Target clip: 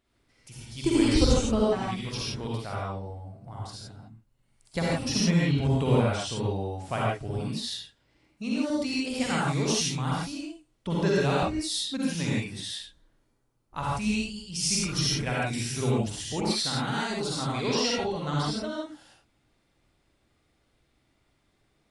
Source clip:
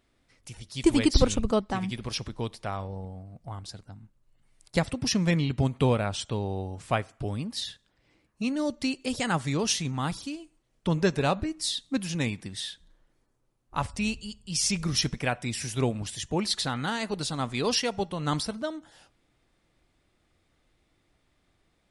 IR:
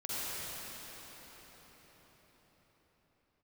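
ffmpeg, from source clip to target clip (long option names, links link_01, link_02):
-filter_complex "[0:a]asettb=1/sr,asplit=3[link_01][link_02][link_03];[link_01]atrim=end=17.554[link_04];[link_02]atrim=start=17.55:end=18.64,asetpts=PTS-STARTPTS,afade=type=in:duration=0.004:curve=qsin,afade=type=out:start_time=1.086:duration=0.004:curve=qsin,lowpass=6700[link_05];[link_03]atrim=start=18.636[link_06];[link_04][link_05]acrossfade=duration=0.004:curve1=hsin:curve2=qsin[link_07];[link_07][link_06]acrossfade=duration=0.004:curve1=qsin:curve2=hsin[link_08];[1:a]atrim=start_sample=2205,afade=type=out:start_time=0.22:duration=0.01,atrim=end_sample=10143[link_09];[link_08][link_09]afir=irnorm=-1:irlink=0"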